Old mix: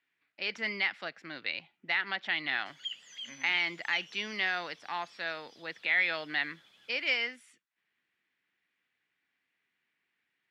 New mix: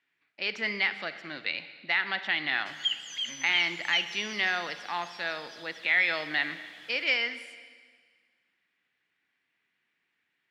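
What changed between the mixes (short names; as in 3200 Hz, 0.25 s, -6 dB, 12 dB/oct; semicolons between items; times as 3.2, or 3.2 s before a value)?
background +7.5 dB; reverb: on, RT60 1.7 s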